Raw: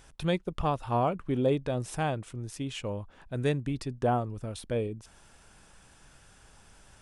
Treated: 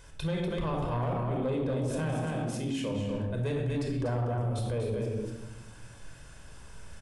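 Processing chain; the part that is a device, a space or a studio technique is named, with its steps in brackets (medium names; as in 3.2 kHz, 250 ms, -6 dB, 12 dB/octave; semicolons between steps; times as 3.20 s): 1.98–2.92 s: resonant low shelf 130 Hz -13 dB, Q 3; delay 242 ms -5 dB; simulated room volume 3900 m³, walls furnished, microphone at 5.1 m; soft clipper into limiter (saturation -16 dBFS, distortion -16 dB; peak limiter -24 dBFS, peak gain reduction 8 dB); trim -1 dB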